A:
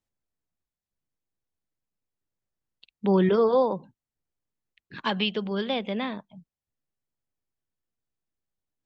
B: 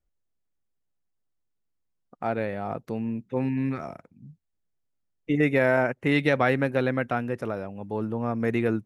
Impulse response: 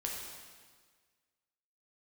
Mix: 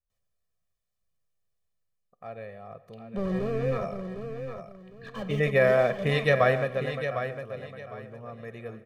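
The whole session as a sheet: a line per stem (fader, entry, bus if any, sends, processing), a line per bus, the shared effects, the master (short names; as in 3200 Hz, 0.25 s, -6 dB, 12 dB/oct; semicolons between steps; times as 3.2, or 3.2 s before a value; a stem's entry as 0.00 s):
0.0 dB, 0.10 s, send -17 dB, echo send -13.5 dB, slew limiter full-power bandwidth 26 Hz; auto duck -8 dB, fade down 0.60 s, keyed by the second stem
3.34 s -16.5 dB -> 3.68 s -4 dB -> 6.41 s -4 dB -> 7.21 s -17 dB, 0.00 s, send -12.5 dB, echo send -7.5 dB, dry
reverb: on, RT60 1.6 s, pre-delay 5 ms
echo: feedback echo 0.755 s, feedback 25%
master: comb 1.7 ms, depth 79%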